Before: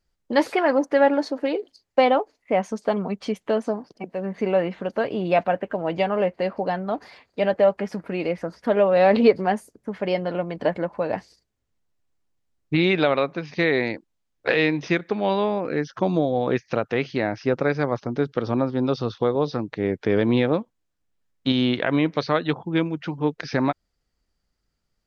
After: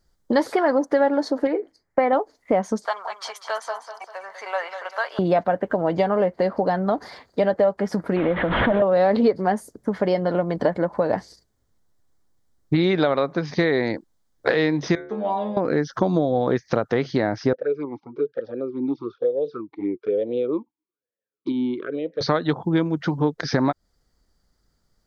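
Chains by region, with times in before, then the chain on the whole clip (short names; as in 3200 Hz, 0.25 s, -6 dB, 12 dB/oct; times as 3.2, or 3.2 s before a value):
1.47–2.13 resonant high shelf 2700 Hz -8.5 dB, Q 3 + resonator 160 Hz, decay 0.2 s, mix 40%
2.85–5.19 HPF 900 Hz 24 dB/oct + feedback echo 0.197 s, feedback 45%, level -10 dB
8.16–8.82 delta modulation 16 kbps, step -29 dBFS + notch 420 Hz, Q 6.8 + backwards sustainer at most 49 dB/s
14.95–15.57 bell 4600 Hz -12 dB 0.58 oct + metallic resonator 71 Hz, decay 0.52 s, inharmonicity 0.002
17.53–22.21 envelope flanger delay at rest 9.8 ms, full sweep at -17.5 dBFS + vowel sweep e-u 1.1 Hz
whole clip: bell 2600 Hz -13.5 dB 0.45 oct; compressor 3:1, threshold -27 dBFS; gain +8.5 dB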